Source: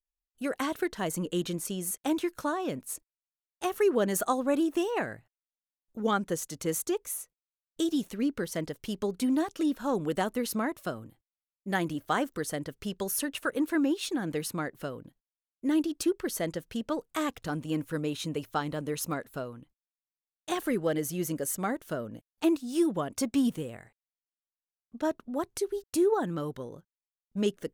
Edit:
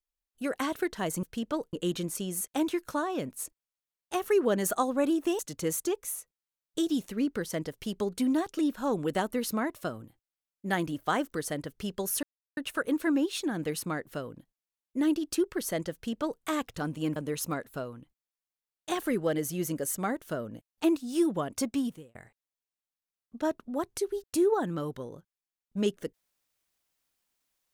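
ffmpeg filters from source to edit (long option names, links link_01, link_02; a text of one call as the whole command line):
ffmpeg -i in.wav -filter_complex "[0:a]asplit=7[link_01][link_02][link_03][link_04][link_05][link_06][link_07];[link_01]atrim=end=1.232[link_08];[link_02]atrim=start=16.608:end=17.112[link_09];[link_03]atrim=start=1.228:end=4.892[link_10];[link_04]atrim=start=6.408:end=13.25,asetpts=PTS-STARTPTS,afade=type=out:start_time=6.838:duration=0.004:curve=hsin,apad=pad_dur=0.34[link_11];[link_05]atrim=start=13.25:end=17.842,asetpts=PTS-STARTPTS,afade=type=in:duration=0.004:curve=hsin[link_12];[link_06]atrim=start=18.758:end=23.75,asetpts=PTS-STARTPTS,afade=type=out:start_time=4.442:duration=0.55[link_13];[link_07]atrim=start=23.75,asetpts=PTS-STARTPTS,afade=type=in:duration=0.004:curve=hsin[link_14];[link_08][link_09]acrossfade=duration=0.004:curve1=hsin:curve2=hsin[link_15];[link_15][link_10]acrossfade=duration=0.004:curve1=hsin:curve2=hsin[link_16];[link_11][link_12]concat=n=2:v=0:a=1[link_17];[link_16][link_17]acrossfade=duration=0.004:curve1=hsin:curve2=hsin[link_18];[link_13][link_14]concat=n=2:v=0:a=1[link_19];[link_18][link_19]acrossfade=duration=0.004:curve1=hsin:curve2=hsin" out.wav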